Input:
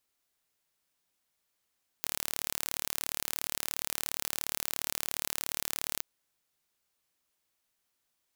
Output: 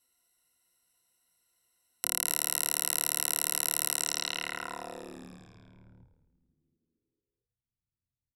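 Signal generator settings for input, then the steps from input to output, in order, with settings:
pulse train 37.1/s, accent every 0, -5.5 dBFS 3.99 s
ripple EQ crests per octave 2, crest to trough 17 dB; low-pass sweep 11000 Hz -> 120 Hz, 3.93–5.48; frequency-shifting echo 0.229 s, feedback 62%, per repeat -87 Hz, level -16 dB

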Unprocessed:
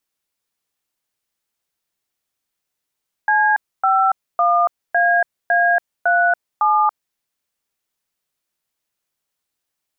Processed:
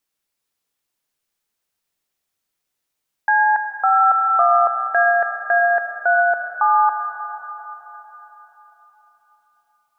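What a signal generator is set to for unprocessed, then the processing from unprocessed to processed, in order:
DTMF "C51AA37", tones 0.283 s, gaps 0.272 s, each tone -15 dBFS
digital reverb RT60 4.2 s, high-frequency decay 1×, pre-delay 40 ms, DRR 5 dB

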